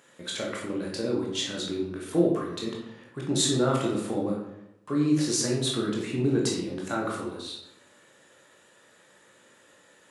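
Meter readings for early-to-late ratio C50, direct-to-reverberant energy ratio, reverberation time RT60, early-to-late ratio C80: 3.0 dB, -3.0 dB, 0.85 s, 6.0 dB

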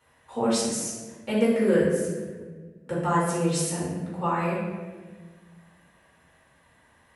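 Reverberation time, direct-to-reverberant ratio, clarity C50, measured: 1.5 s, -8.5 dB, 0.0 dB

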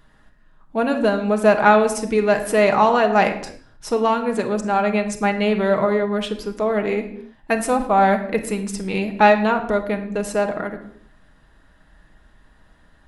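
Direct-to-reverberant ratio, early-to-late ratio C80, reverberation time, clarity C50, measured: 4.0 dB, 13.0 dB, no single decay rate, 10.5 dB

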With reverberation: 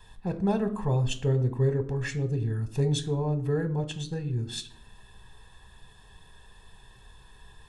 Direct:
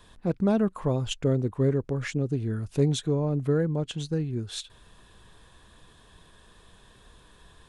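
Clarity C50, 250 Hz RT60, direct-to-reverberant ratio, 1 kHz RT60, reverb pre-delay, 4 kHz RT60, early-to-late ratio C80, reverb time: 15.0 dB, 0.90 s, 8.5 dB, 0.50 s, 3 ms, 0.40 s, 18.5 dB, 0.55 s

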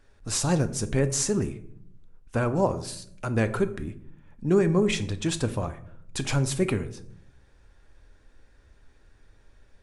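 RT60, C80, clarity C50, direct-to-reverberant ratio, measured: 0.65 s, 18.0 dB, 15.0 dB, 10.0 dB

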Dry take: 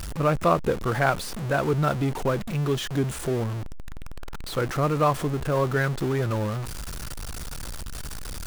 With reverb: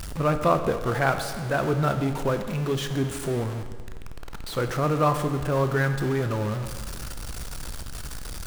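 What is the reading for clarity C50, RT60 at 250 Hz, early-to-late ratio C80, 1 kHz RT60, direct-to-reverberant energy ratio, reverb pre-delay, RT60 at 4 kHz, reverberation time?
9.0 dB, 1.7 s, 10.5 dB, 1.7 s, 7.5 dB, 20 ms, 1.6 s, 1.7 s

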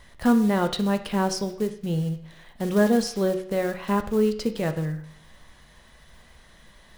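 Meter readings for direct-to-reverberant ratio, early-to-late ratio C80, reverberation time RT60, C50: 7.0 dB, 14.5 dB, 0.65 s, 12.0 dB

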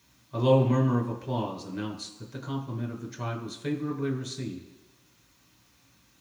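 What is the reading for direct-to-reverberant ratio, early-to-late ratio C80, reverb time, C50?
-1.5 dB, 11.0 dB, 1.1 s, 8.5 dB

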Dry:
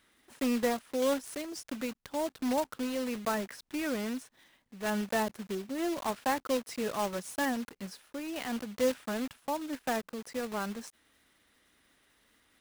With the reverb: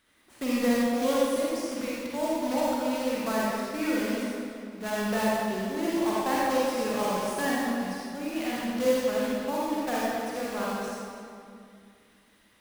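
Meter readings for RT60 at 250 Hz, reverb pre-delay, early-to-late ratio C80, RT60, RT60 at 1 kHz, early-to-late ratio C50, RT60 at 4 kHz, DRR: 2.6 s, 39 ms, -2.0 dB, 2.4 s, 2.3 s, -5.0 dB, 1.6 s, -6.5 dB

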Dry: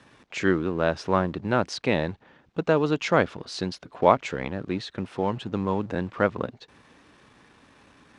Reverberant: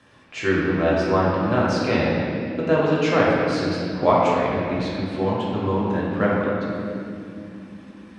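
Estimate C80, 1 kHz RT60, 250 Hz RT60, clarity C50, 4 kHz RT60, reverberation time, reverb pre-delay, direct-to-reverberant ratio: 0.0 dB, 2.2 s, 5.1 s, -2.0 dB, 1.8 s, 2.8 s, 3 ms, -6.5 dB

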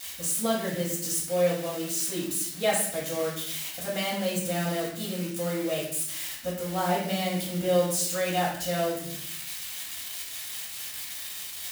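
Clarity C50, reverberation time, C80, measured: 2.5 dB, 0.65 s, 6.5 dB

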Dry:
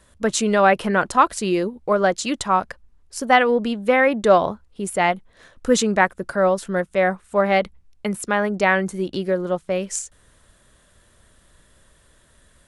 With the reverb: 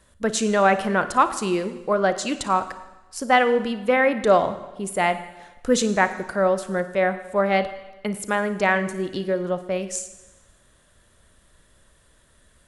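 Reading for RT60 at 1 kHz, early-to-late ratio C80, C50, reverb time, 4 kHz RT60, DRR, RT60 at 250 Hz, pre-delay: 1.1 s, 14.0 dB, 12.0 dB, 1.1 s, 1.1 s, 11.0 dB, 1.1 s, 35 ms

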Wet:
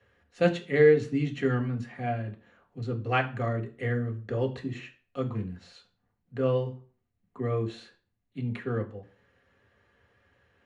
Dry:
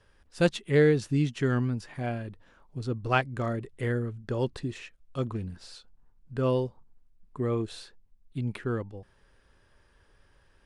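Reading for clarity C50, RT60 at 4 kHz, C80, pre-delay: 14.0 dB, 0.35 s, 19.5 dB, 3 ms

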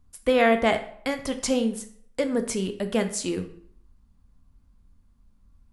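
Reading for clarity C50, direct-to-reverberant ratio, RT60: 12.0 dB, 7.5 dB, 0.60 s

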